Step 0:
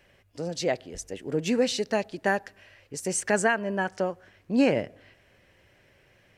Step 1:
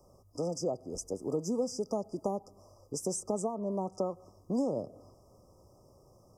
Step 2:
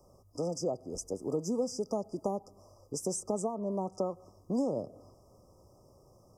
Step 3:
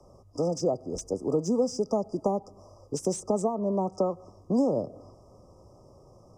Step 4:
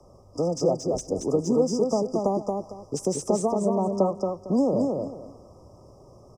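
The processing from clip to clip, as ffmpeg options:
-filter_complex "[0:a]acrossover=split=160|580[s0][s1][s2];[s0]acompressor=threshold=0.00251:ratio=4[s3];[s1]acompressor=threshold=0.0158:ratio=4[s4];[s2]acompressor=threshold=0.01:ratio=4[s5];[s3][s4][s5]amix=inputs=3:normalize=0,afftfilt=real='re*(1-between(b*sr/4096,1300,4800))':imag='im*(1-between(b*sr/4096,1300,4800))':win_size=4096:overlap=0.75,volume=1.33"
-af anull
-filter_complex "[0:a]acrossover=split=160|600|3600[s0][s1][s2][s3];[s3]asoftclip=type=hard:threshold=0.0158[s4];[s0][s1][s2][s4]amix=inputs=4:normalize=0,adynamicsmooth=sensitivity=4.5:basefreq=7200,volume=2.11"
-af "aecho=1:1:227|454|681:0.668|0.16|0.0385,volume=1.26"

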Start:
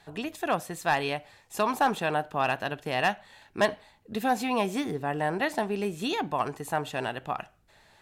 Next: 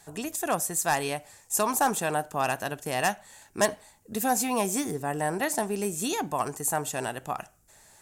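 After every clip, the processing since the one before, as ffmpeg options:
-af "highshelf=f=5100:t=q:w=1.5:g=13.5,bandreject=f=4100:w=29"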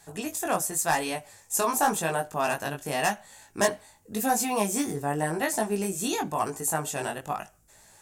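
-af "flanger=delay=18:depth=3.4:speed=0.91,volume=1.5"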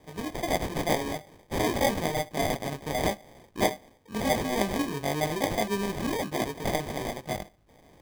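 -af "acrusher=samples=32:mix=1:aa=0.000001,volume=0.891"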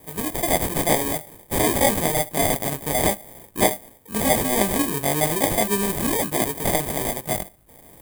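-filter_complex "[0:a]aexciter=amount=3:drive=9.6:freq=7900,acrossover=split=7500[s0][s1];[s1]asoftclip=type=tanh:threshold=0.0794[s2];[s0][s2]amix=inputs=2:normalize=0,volume=1.88"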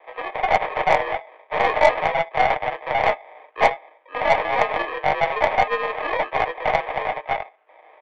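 -af "highpass=f=490:t=q:w=0.5412,highpass=f=490:t=q:w=1.307,lowpass=f=2700:t=q:w=0.5176,lowpass=f=2700:t=q:w=0.7071,lowpass=f=2700:t=q:w=1.932,afreqshift=60,aecho=1:1:6.5:0.35,aeval=exprs='0.501*(cos(1*acos(clip(val(0)/0.501,-1,1)))-cos(1*PI/2))+0.0251*(cos(8*acos(clip(val(0)/0.501,-1,1)))-cos(8*PI/2))':c=same,volume=1.78"

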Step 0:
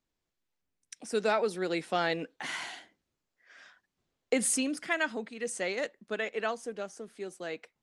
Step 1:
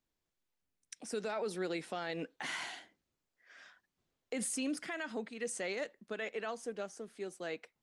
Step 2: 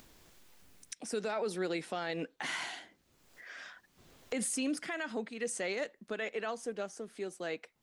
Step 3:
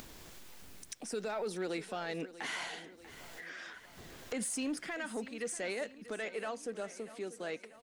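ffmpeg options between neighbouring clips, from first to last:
-af "alimiter=level_in=1.26:limit=0.0631:level=0:latency=1:release=67,volume=0.794,volume=0.75"
-af "acompressor=mode=upward:threshold=0.00794:ratio=2.5,volume=1.33"
-af "acompressor=mode=upward:threshold=0.01:ratio=2.5,asoftclip=type=tanh:threshold=0.0447,aecho=1:1:640|1280|1920|2560|3200:0.168|0.0923|0.0508|0.0279|0.0154,volume=0.891"

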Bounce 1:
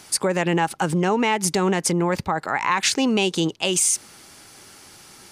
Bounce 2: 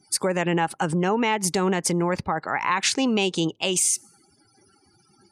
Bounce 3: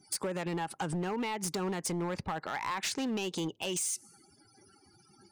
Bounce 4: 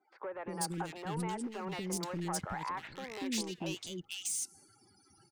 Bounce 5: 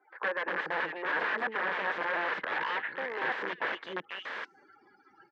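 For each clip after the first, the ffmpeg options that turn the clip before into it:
-af "afftdn=nr=34:nf=-43,volume=0.794"
-af "acompressor=threshold=0.0398:ratio=4,asoftclip=type=hard:threshold=0.0447,volume=0.794"
-filter_complex "[0:a]acrossover=split=400|2000[s0][s1][s2];[s0]adelay=240[s3];[s2]adelay=490[s4];[s3][s1][s4]amix=inputs=3:normalize=0,volume=0.75"
-af "aeval=exprs='(mod(56.2*val(0)+1,2)-1)/56.2':c=same,highpass=400,equalizer=f=490:t=q:w=4:g=4,equalizer=f=710:t=q:w=4:g=-4,equalizer=f=1000:t=q:w=4:g=3,equalizer=f=1700:t=q:w=4:g=10,equalizer=f=2600:t=q:w=4:g=-4,lowpass=f=2700:w=0.5412,lowpass=f=2700:w=1.3066,volume=2.66"

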